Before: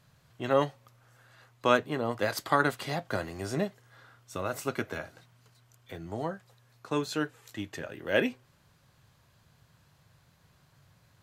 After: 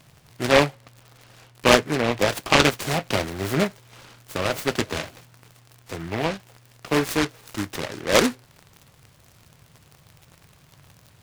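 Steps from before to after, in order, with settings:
0:00.61–0:02.59: high-shelf EQ 3,600 Hz −8.5 dB
surface crackle 110 per second −44 dBFS
short delay modulated by noise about 1,400 Hz, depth 0.16 ms
level +8.5 dB

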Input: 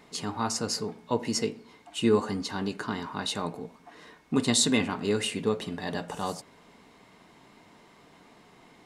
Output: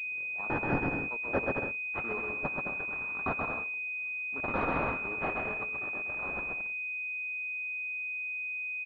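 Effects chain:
turntable start at the beginning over 0.48 s
first difference
on a send: bouncing-ball delay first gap 130 ms, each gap 0.65×, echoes 5
on the sum: leveller curve on the samples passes 2
switching amplifier with a slow clock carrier 2,500 Hz

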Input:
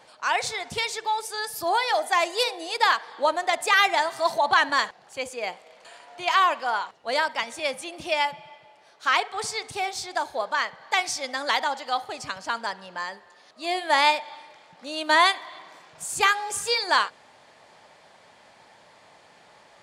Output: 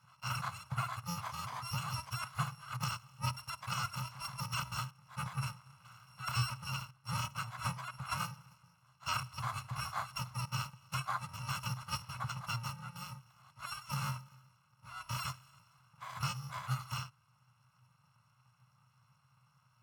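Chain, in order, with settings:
samples in bit-reversed order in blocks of 128 samples
pair of resonant band-passes 360 Hz, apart 3 octaves
speech leveller within 5 dB 0.5 s
level +12.5 dB

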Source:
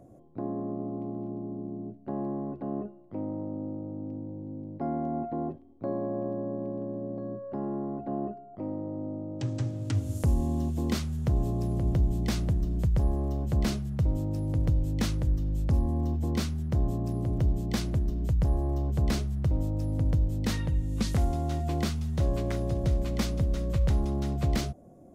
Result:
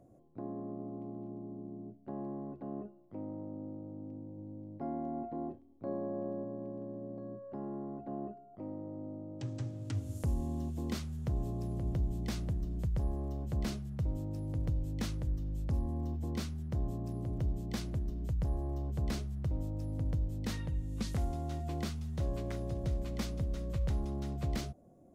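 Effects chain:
0:04.35–0:06.44: double-tracking delay 29 ms −9.5 dB
level −8 dB

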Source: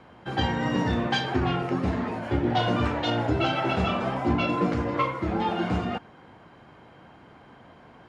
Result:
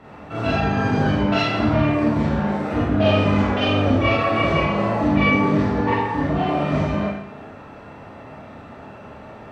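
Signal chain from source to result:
in parallel at +3 dB: downward compressor 10 to 1, threshold −38 dBFS, peak gain reduction 19 dB
on the sum: speed change −15%
harmonic generator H 3 −23 dB, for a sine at −9.5 dBFS
four-comb reverb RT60 0.78 s, combs from 27 ms, DRR −7.5 dB
level −2 dB

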